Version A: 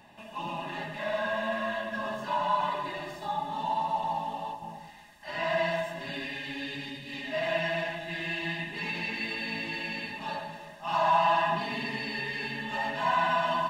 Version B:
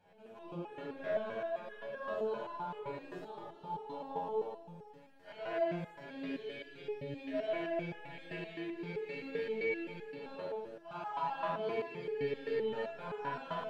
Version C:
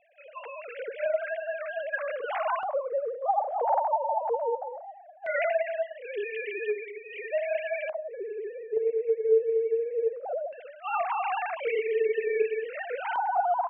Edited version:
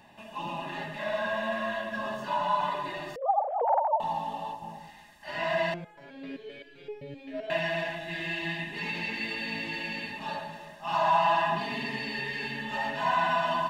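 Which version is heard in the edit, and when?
A
3.16–4.00 s: from C
5.74–7.50 s: from B

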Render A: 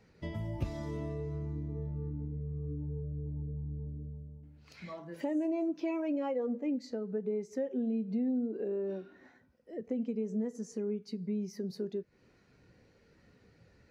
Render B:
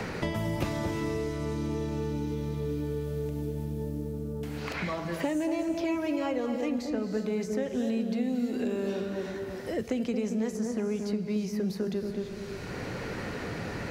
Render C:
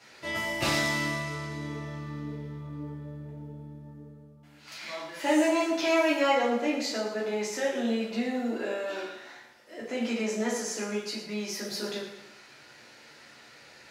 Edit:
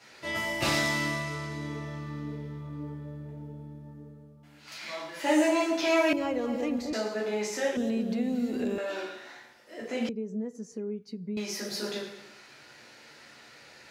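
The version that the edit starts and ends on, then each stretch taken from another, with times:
C
6.13–6.93 s: from B
7.77–8.78 s: from B
10.09–11.37 s: from A

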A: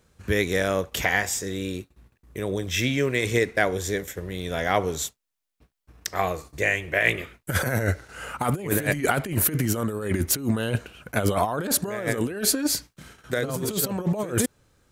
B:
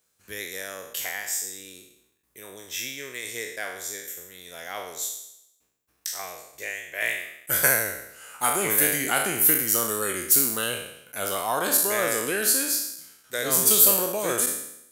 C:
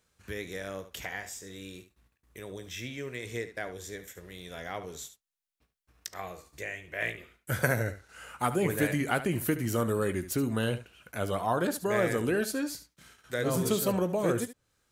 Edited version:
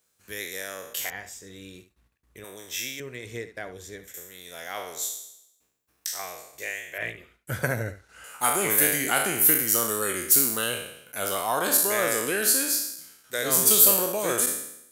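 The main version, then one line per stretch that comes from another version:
B
1.10–2.44 s: from C
3.00–4.14 s: from C
6.98–8.24 s: from C
not used: A

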